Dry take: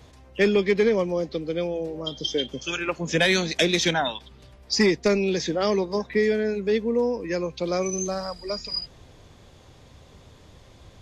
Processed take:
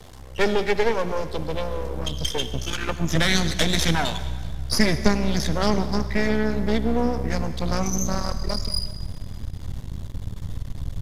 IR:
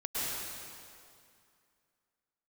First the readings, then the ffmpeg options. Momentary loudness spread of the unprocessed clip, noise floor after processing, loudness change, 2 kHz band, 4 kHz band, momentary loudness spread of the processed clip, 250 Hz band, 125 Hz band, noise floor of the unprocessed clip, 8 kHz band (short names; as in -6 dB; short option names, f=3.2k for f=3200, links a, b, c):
9 LU, -38 dBFS, -0.5 dB, 0.0 dB, +1.0 dB, 14 LU, +1.5 dB, +7.0 dB, -51 dBFS, +2.5 dB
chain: -filter_complex "[0:a]bandreject=f=2.5k:w=5.8,asubboost=boost=11.5:cutoff=110,asplit=2[a][b];[b]acompressor=threshold=-35dB:ratio=6,volume=0dB[c];[a][c]amix=inputs=2:normalize=0,aeval=exprs='max(val(0),0)':c=same,acrusher=bits=8:mix=0:aa=0.000001,aecho=1:1:199|398|597|796:0.0794|0.0421|0.0223|0.0118,asplit=2[d][e];[1:a]atrim=start_sample=2205,asetrate=70560,aresample=44100[f];[e][f]afir=irnorm=-1:irlink=0,volume=-14dB[g];[d][g]amix=inputs=2:normalize=0,aresample=32000,aresample=44100,volume=2.5dB"